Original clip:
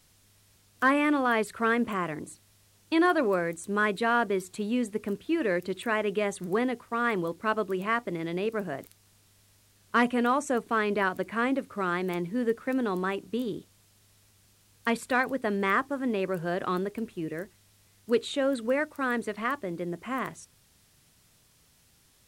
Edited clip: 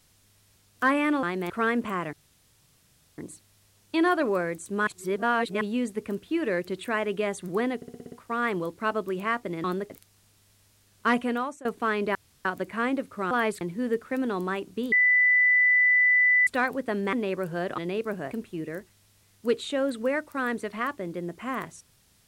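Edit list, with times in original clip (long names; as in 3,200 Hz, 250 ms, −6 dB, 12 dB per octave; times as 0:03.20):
0:01.23–0:01.53: swap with 0:11.90–0:12.17
0:02.16: splice in room tone 1.05 s
0:03.85–0:04.59: reverse
0:06.74: stutter 0.06 s, 7 plays
0:08.26–0:08.79: swap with 0:16.69–0:16.95
0:10.11–0:10.54: fade out, to −21.5 dB
0:11.04: splice in room tone 0.30 s
0:13.48–0:15.03: beep over 1,990 Hz −17 dBFS
0:15.69–0:16.04: remove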